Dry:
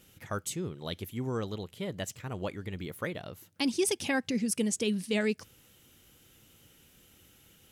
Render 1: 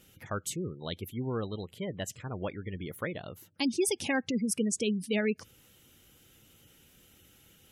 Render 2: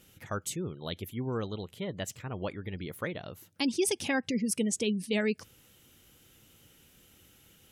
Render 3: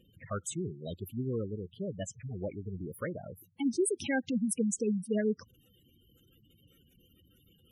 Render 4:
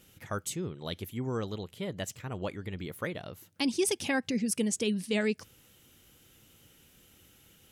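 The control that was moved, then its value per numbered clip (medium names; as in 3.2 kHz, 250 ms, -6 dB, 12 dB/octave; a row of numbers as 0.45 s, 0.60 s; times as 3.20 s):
spectral gate, under each frame's peak: -25 dB, -35 dB, -10 dB, -50 dB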